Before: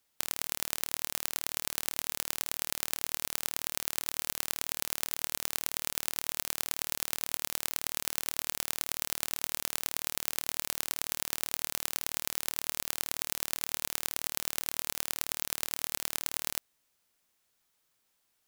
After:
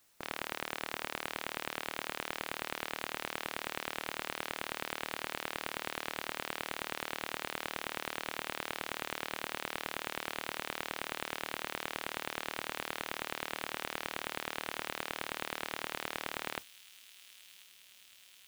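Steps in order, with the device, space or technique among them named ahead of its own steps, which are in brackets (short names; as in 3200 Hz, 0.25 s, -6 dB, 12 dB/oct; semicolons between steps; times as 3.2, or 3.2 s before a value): aircraft radio (BPF 320–2600 Hz; hard clip -26.5 dBFS, distortion -10 dB; white noise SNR 13 dB; gate -50 dBFS, range -14 dB); thin delay 1.039 s, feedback 74%, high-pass 4200 Hz, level -10.5 dB; gain +6.5 dB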